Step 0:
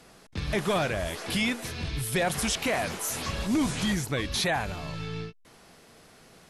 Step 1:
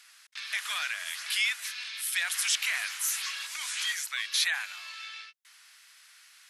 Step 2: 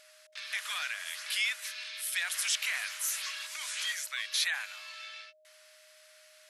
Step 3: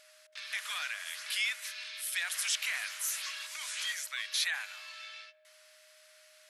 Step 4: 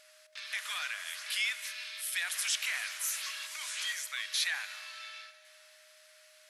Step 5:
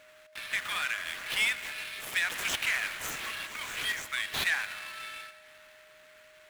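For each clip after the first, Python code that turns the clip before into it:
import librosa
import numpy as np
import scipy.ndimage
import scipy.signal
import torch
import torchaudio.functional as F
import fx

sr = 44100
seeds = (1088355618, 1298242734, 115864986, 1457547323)

y1 = scipy.signal.sosfilt(scipy.signal.butter(4, 1500.0, 'highpass', fs=sr, output='sos'), x)
y1 = y1 * 10.0 ** (2.5 / 20.0)
y2 = y1 + 10.0 ** (-59.0 / 20.0) * np.sin(2.0 * np.pi * 620.0 * np.arange(len(y1)) / sr)
y2 = y2 * 10.0 ** (-3.0 / 20.0)
y3 = fx.echo_wet_lowpass(y2, sr, ms=76, feedback_pct=68, hz=2100.0, wet_db=-20)
y3 = y3 * 10.0 ** (-1.5 / 20.0)
y4 = fx.rev_plate(y3, sr, seeds[0], rt60_s=3.3, hf_ratio=0.95, predelay_ms=0, drr_db=13.0)
y5 = scipy.signal.medfilt(y4, 9)
y5 = y5 * 10.0 ** (7.0 / 20.0)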